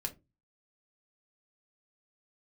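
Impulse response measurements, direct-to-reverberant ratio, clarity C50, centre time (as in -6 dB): 2.5 dB, 17.0 dB, 7 ms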